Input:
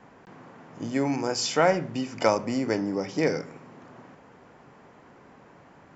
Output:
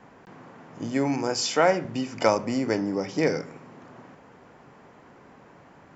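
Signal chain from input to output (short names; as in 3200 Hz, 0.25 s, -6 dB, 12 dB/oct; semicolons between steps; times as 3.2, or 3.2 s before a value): 1.41–1.85 HPF 190 Hz; gain +1 dB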